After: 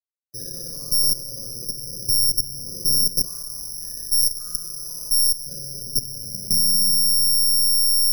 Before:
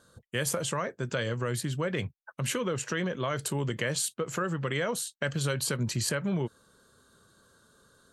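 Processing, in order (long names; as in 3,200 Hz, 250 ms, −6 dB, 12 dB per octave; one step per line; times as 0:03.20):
hold until the input has moved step −34 dBFS
spectral tilt −4.5 dB per octave
notch filter 4,100 Hz, Q 9.9
flutter between parallel walls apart 10.3 metres, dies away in 1.3 s
downward compressor 5 to 1, threshold −16 dBFS, peak gain reduction 7 dB
gate on every frequency bin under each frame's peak −25 dB strong
convolution reverb RT60 2.6 s, pre-delay 6 ms, DRR −6 dB
bad sample-rate conversion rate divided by 8×, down none, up zero stuff
output level in coarse steps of 15 dB
0:03.26–0:05.47: octave-band graphic EQ 125/250/500/1,000/2,000/4,000/8,000 Hz −9/−8/−10/+7/+7/−7/+5 dB
level −17.5 dB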